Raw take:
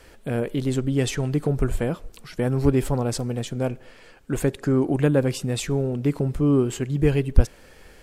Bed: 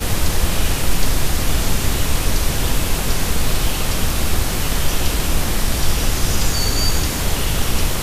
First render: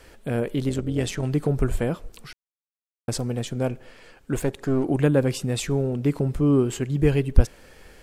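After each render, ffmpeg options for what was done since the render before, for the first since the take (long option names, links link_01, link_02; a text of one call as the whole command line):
ffmpeg -i in.wav -filter_complex "[0:a]asettb=1/sr,asplit=3[link_01][link_02][link_03];[link_01]atrim=end=0.694[link_04];[link_02]atrim=start=0.69:end=1.23,asetpts=PTS-STARTPTS,afade=type=in:duration=0.004:curve=qsin,afade=type=out:start_time=0.536:duration=0.004:curve=qsin,tremolo=f=180:d=0.621[link_05];[link_03]atrim=start=1.226[link_06];[link_04][link_05]acrossfade=duration=0.004:curve1=hsin:curve2=qsin[link_07];[link_07][link_06]acrossfade=duration=0.004:curve1=qsin:curve2=hsin,asettb=1/sr,asplit=3[link_08][link_09][link_10];[link_08]atrim=end=4.384[link_11];[link_09]atrim=start=4.38:end=4.84,asetpts=PTS-STARTPTS,afade=type=in:duration=0.004:curve=qsin,afade=type=out:start_time=0.456:duration=0.004:curve=qsin,aeval=exprs='if(lt(val(0),0),0.447*val(0),val(0))':channel_layout=same[link_12];[link_10]atrim=start=4.836[link_13];[link_11][link_12]acrossfade=duration=0.004:curve1=hsin:curve2=qsin[link_14];[link_14][link_13]acrossfade=duration=0.004:curve1=qsin:curve2=hsin,asplit=3[link_15][link_16][link_17];[link_15]atrim=end=2.33,asetpts=PTS-STARTPTS,afade=type=out:start_time=2.326:duration=0.004:curve=hsin[link_18];[link_16]atrim=start=2.33:end=3.08,asetpts=PTS-STARTPTS,volume=0[link_19];[link_17]atrim=start=3.08,asetpts=PTS-STARTPTS,afade=type=in:duration=0.004:curve=hsin[link_20];[link_18][link_19][link_20]concat=n=3:v=0:a=1" out.wav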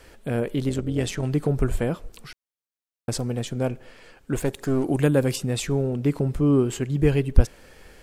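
ffmpeg -i in.wav -filter_complex "[0:a]asettb=1/sr,asplit=3[link_01][link_02][link_03];[link_01]atrim=end=4.454[link_04];[link_02]atrim=start=4.45:end=5.36,asetpts=PTS-STARTPTS,afade=type=in:duration=0.004:curve=qsin,afade=type=out:start_time=0.906:duration=0.004:curve=qsin,aemphasis=mode=production:type=cd[link_05];[link_03]atrim=start=5.356[link_06];[link_04][link_05]acrossfade=duration=0.004:curve1=hsin:curve2=qsin[link_07];[link_07][link_06]acrossfade=duration=0.004:curve1=qsin:curve2=hsin" out.wav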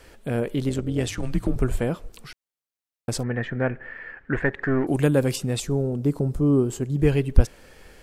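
ffmpeg -i in.wav -filter_complex "[0:a]asettb=1/sr,asplit=3[link_01][link_02][link_03];[link_01]atrim=end=1.084[link_04];[link_02]atrim=start=1.08:end=1.56,asetpts=PTS-STARTPTS,afade=type=in:duration=0.004:curve=qsin,afade=type=out:start_time=0.476:duration=0.004:curve=qsin,afreqshift=-120[link_05];[link_03]atrim=start=1.556[link_06];[link_04][link_05]acrossfade=duration=0.004:curve1=hsin:curve2=qsin[link_07];[link_07][link_06]acrossfade=duration=0.004:curve1=qsin:curve2=hsin,asettb=1/sr,asplit=3[link_08][link_09][link_10];[link_08]atrim=end=3.234[link_11];[link_09]atrim=start=3.23:end=4.87,asetpts=PTS-STARTPTS,afade=type=in:duration=0.004:curve=qsin,afade=type=out:start_time=1.636:duration=0.004:curve=qsin,lowpass=frequency=1800:width_type=q:width=7.9[link_12];[link_10]atrim=start=4.866[link_13];[link_11][link_12]acrossfade=duration=0.004:curve1=hsin:curve2=qsin[link_14];[link_14][link_13]acrossfade=duration=0.004:curve1=qsin:curve2=hsin,asettb=1/sr,asplit=3[link_15][link_16][link_17];[link_15]atrim=end=5.604[link_18];[link_16]atrim=start=5.6:end=6.99,asetpts=PTS-STARTPTS,afade=type=in:duration=0.004:curve=qsin,afade=type=out:start_time=1.386:duration=0.004:curve=qsin,equalizer=frequency=2300:width_type=o:width=1.5:gain=-11[link_19];[link_17]atrim=start=6.986[link_20];[link_18][link_19]acrossfade=duration=0.004:curve1=hsin:curve2=qsin[link_21];[link_21][link_20]acrossfade=duration=0.004:curve1=qsin:curve2=hsin" out.wav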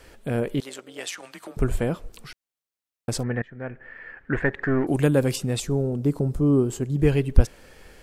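ffmpeg -i in.wav -filter_complex "[0:a]asettb=1/sr,asplit=3[link_01][link_02][link_03];[link_01]atrim=end=0.604[link_04];[link_02]atrim=start=0.6:end=1.57,asetpts=PTS-STARTPTS,afade=type=in:duration=0.004:curve=qsin,afade=type=out:start_time=0.966:duration=0.004:curve=qsin,highpass=780[link_05];[link_03]atrim=start=1.566[link_06];[link_04][link_05]acrossfade=duration=0.004:curve1=hsin:curve2=qsin[link_07];[link_07][link_06]acrossfade=duration=0.004:curve1=qsin:curve2=hsin,asplit=2[link_08][link_09];[link_08]atrim=end=3.42,asetpts=PTS-STARTPTS,afade=type=out:start_time=3.416:duration=0.004:curve=hsin:silence=0.1[link_10];[link_09]atrim=start=3.42,asetpts=PTS-STARTPTS,afade=type=in:duration=0.9:silence=0.1[link_11];[link_10][link_11]concat=n=2:v=0:a=1" out.wav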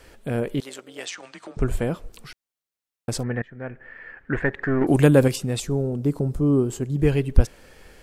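ffmpeg -i in.wav -filter_complex "[0:a]asettb=1/sr,asplit=3[link_01][link_02][link_03];[link_01]atrim=end=1.054[link_04];[link_02]atrim=start=1.05:end=1.68,asetpts=PTS-STARTPTS,afade=type=in:duration=0.004:curve=qsin,afade=type=out:start_time=0.626:duration=0.004:curve=qsin,lowpass=frequency=7700:width=0.5412,lowpass=frequency=7700:width=1.3066[link_05];[link_03]atrim=start=1.676[link_06];[link_04][link_05]acrossfade=duration=0.004:curve1=hsin:curve2=qsin[link_07];[link_07][link_06]acrossfade=duration=0.004:curve1=qsin:curve2=hsin,asettb=1/sr,asplit=3[link_08][link_09][link_10];[link_08]atrim=end=4.814[link_11];[link_09]atrim=start=4.81:end=5.28,asetpts=PTS-STARTPTS,afade=type=in:duration=0.004:curve=qsin,afade=type=out:start_time=0.466:duration=0.004:curve=qsin,acontrast=30[link_12];[link_10]atrim=start=5.276[link_13];[link_11][link_12]acrossfade=duration=0.004:curve1=hsin:curve2=qsin[link_14];[link_14][link_13]acrossfade=duration=0.004:curve1=qsin:curve2=hsin" out.wav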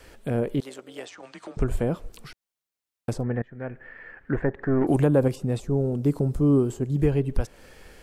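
ffmpeg -i in.wav -filter_complex "[0:a]acrossover=split=660|1100[link_01][link_02][link_03];[link_01]alimiter=limit=-13dB:level=0:latency=1:release=214[link_04];[link_03]acompressor=threshold=-43dB:ratio=12[link_05];[link_04][link_02][link_05]amix=inputs=3:normalize=0" out.wav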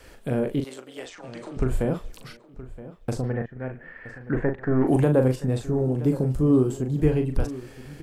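ffmpeg -i in.wav -filter_complex "[0:a]asplit=2[link_01][link_02];[link_02]adelay=39,volume=-6.5dB[link_03];[link_01][link_03]amix=inputs=2:normalize=0,asplit=2[link_04][link_05];[link_05]adelay=971,lowpass=frequency=3500:poles=1,volume=-16dB,asplit=2[link_06][link_07];[link_07]adelay=971,lowpass=frequency=3500:poles=1,volume=0.24[link_08];[link_04][link_06][link_08]amix=inputs=3:normalize=0" out.wav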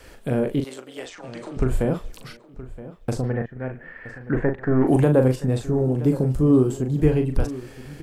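ffmpeg -i in.wav -af "volume=2.5dB" out.wav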